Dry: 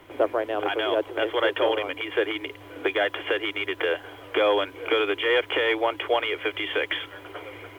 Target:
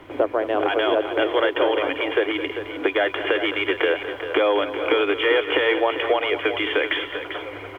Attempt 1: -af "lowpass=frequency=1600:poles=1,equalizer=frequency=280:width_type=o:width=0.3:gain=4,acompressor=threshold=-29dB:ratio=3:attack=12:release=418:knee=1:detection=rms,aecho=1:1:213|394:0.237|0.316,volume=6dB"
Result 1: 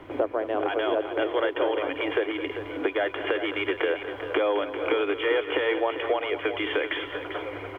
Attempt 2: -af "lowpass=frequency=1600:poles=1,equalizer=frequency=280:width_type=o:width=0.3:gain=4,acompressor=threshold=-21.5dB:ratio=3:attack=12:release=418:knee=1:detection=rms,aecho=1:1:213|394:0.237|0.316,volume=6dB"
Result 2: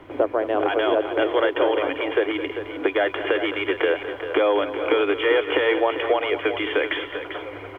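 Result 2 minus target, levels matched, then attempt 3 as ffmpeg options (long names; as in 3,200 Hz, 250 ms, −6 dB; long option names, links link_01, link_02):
4,000 Hz band −3.0 dB
-af "lowpass=frequency=3300:poles=1,equalizer=frequency=280:width_type=o:width=0.3:gain=4,acompressor=threshold=-21.5dB:ratio=3:attack=12:release=418:knee=1:detection=rms,aecho=1:1:213|394:0.237|0.316,volume=6dB"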